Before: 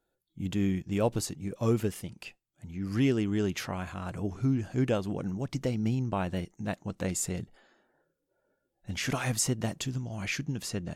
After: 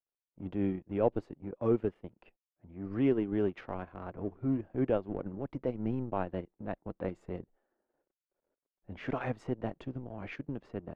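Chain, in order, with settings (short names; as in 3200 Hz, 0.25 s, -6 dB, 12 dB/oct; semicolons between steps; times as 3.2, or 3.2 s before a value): G.711 law mismatch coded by A; three-band isolator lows -21 dB, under 320 Hz, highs -22 dB, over 3400 Hz; transient shaper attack -4 dB, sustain -8 dB; tilt -4.5 dB/oct; mismatched tape noise reduction decoder only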